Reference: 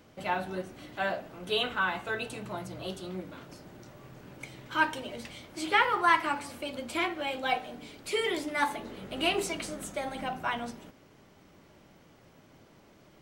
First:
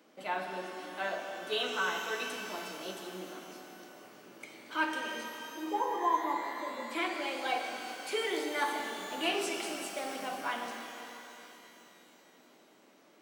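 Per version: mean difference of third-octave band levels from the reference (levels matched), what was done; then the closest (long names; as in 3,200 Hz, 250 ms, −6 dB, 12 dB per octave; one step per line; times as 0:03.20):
8.0 dB: high-pass filter 230 Hz 24 dB per octave
gain on a spectral selection 0:05.24–0:06.91, 1,200–12,000 Hz −28 dB
reverb with rising layers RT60 3.1 s, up +12 semitones, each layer −8 dB, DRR 2.5 dB
level −4.5 dB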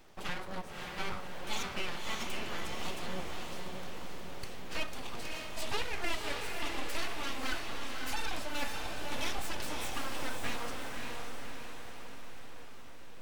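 11.5 dB: downward compressor 3 to 1, threshold −34 dBFS, peak gain reduction 11.5 dB
full-wave rectification
on a send: feedback delay with all-pass diffusion 575 ms, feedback 58%, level −3 dB
on the sum: level +1 dB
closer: first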